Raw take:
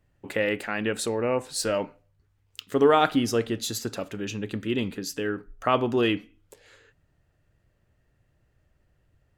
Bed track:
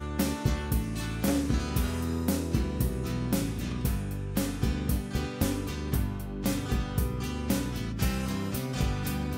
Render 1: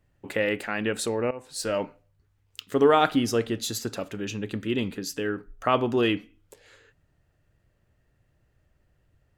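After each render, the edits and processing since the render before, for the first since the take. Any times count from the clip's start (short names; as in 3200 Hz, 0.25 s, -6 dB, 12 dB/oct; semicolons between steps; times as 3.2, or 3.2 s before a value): 1.31–1.8 fade in, from -17 dB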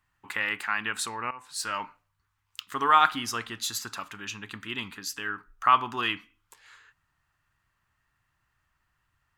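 resonant low shelf 750 Hz -11.5 dB, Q 3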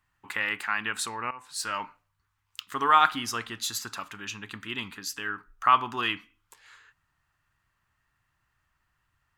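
nothing audible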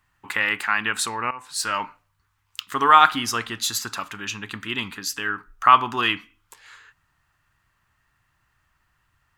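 gain +6.5 dB; limiter -1 dBFS, peak gain reduction 1 dB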